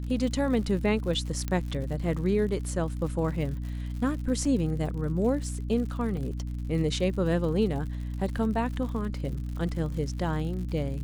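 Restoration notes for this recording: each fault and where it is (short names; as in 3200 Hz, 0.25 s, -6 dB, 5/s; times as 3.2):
crackle 100/s -37 dBFS
hum 60 Hz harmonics 5 -33 dBFS
1.48 pop -17 dBFS
4.45 gap 2.9 ms
6.17 gap 2.3 ms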